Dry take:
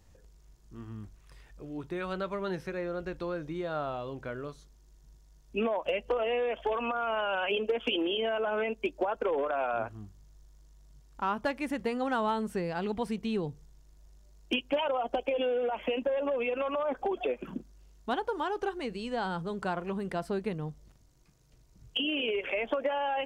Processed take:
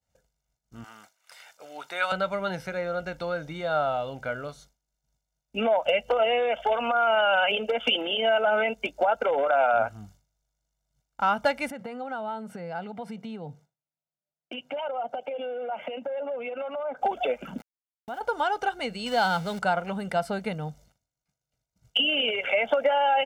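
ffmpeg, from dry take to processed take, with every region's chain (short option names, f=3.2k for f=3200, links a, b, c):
-filter_complex "[0:a]asettb=1/sr,asplit=3[a][b][c];[a]atrim=end=0.844[d];[b]atrim=start=0.84:end=2.12,asetpts=PTS-STARTPTS,afade=t=in:d=0.004:c=qsin,afade=t=out:st=1.276:d=0.004:c=qsin,highpass=760,acontrast=52[e];[c]atrim=start=2.116[f];[d][e]acrossfade=d=0.004:c1=hsin:c2=qsin[g];[g][f]acrossfade=d=0.004:c1=qsin:c2=hsin,asettb=1/sr,asplit=3[h][i][j];[h]atrim=end=11.704[k];[i]atrim=start=11.7:end=17.02,asetpts=PTS-STARTPTS,afade=t=in:d=0.004:c=qsin,afade=t=out:st=5.316:d=0.004:c=qsin,highshelf=f=2.7k:g=-12,acompressor=threshold=-36dB:ratio=6:attack=3.2:release=140:knee=1:detection=peak,highpass=f=120:w=0.5412,highpass=f=120:w=1.3066[l];[j]atrim=start=17.016[m];[k][l]acrossfade=d=0.004:c1=hsin:c2=qsin[n];[n][m]acrossfade=d=0.004:c1=qsin:c2=hsin,asettb=1/sr,asplit=3[o][p][q];[o]atrim=end=17.584[r];[p]atrim=start=17.58:end=18.21,asetpts=PTS-STARTPTS,afade=t=in:d=0.004:c=qsin,afade=t=out:st=0.626:d=0.004:c=qsin,lowpass=2.3k,aeval=exprs='val(0)*gte(abs(val(0)),0.00531)':c=same,acompressor=threshold=-40dB:ratio=4:attack=3.2:release=140:knee=1:detection=peak[s];[q]atrim=start=18.206[t];[r][s]acrossfade=d=0.004:c1=hsin:c2=qsin[u];[u][t]acrossfade=d=0.004:c1=qsin:c2=hsin,asettb=1/sr,asplit=3[v][w][x];[v]atrim=end=19.064[y];[w]atrim=start=19.06:end=19.59,asetpts=PTS-STARTPTS,afade=t=in:d=0.004:c=qsin,afade=t=out:st=0.526:d=0.004:c=qsin,aeval=exprs='val(0)+0.5*0.00596*sgn(val(0))':c=same,equalizer=f=4.6k:t=o:w=1.8:g=5.5[z];[x]atrim=start=19.586[aa];[y][z]acrossfade=d=0.004:c1=hsin:c2=qsin[ab];[ab][aa]acrossfade=d=0.004:c1=qsin:c2=hsin,highpass=f=260:p=1,agate=range=-33dB:threshold=-55dB:ratio=3:detection=peak,aecho=1:1:1.4:0.7,volume=6dB"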